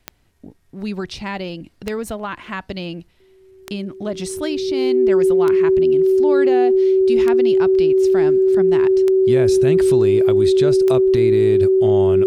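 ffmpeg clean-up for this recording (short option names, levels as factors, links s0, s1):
-af "adeclick=t=4,bandreject=f=380:w=30"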